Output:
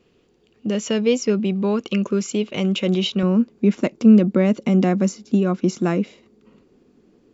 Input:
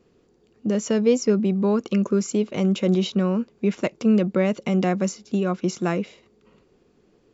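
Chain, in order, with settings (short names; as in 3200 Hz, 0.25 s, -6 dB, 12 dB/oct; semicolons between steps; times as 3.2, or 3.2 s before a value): bell 2900 Hz +9 dB 0.89 oct, from 3.23 s 250 Hz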